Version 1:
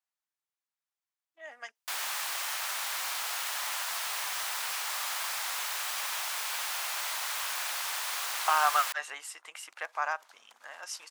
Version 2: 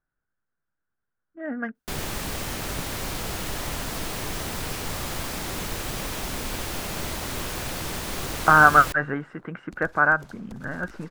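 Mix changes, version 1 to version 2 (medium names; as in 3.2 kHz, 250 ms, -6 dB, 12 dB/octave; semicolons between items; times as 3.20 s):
speech: add resonant low-pass 1.5 kHz, resonance Q 7.9; second sound +5.5 dB; master: remove high-pass 850 Hz 24 dB/octave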